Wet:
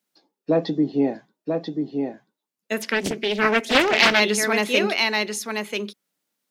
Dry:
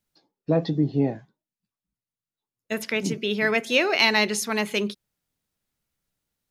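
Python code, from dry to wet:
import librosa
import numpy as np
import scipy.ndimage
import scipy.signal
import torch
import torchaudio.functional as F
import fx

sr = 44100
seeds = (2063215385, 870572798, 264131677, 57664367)

y = scipy.signal.sosfilt(scipy.signal.butter(4, 200.0, 'highpass', fs=sr, output='sos'), x)
y = y + 10.0 ** (-5.0 / 20.0) * np.pad(y, (int(987 * sr / 1000.0), 0))[:len(y)]
y = fx.doppler_dist(y, sr, depth_ms=0.51, at=(2.79, 4.2))
y = y * 10.0 ** (3.0 / 20.0)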